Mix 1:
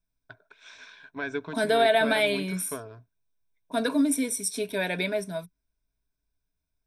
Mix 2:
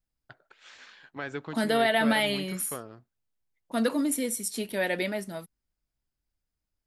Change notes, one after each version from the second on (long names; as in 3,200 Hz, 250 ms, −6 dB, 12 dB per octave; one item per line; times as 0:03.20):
master: remove EQ curve with evenly spaced ripples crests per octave 1.6, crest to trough 12 dB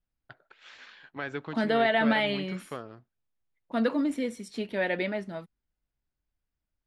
first voice: add high-shelf EQ 4,400 Hz +11 dB
master: add low-pass filter 3,200 Hz 12 dB per octave